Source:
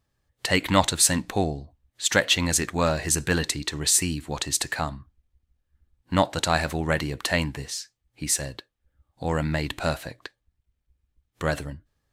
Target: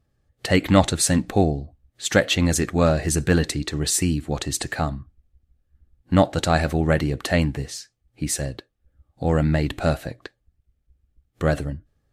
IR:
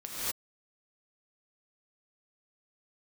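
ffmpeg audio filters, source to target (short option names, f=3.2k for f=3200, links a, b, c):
-af "tiltshelf=f=1.1k:g=5,bandreject=f=970:w=5.2,volume=2.5dB" -ar 48000 -c:a libmp3lame -b:a 64k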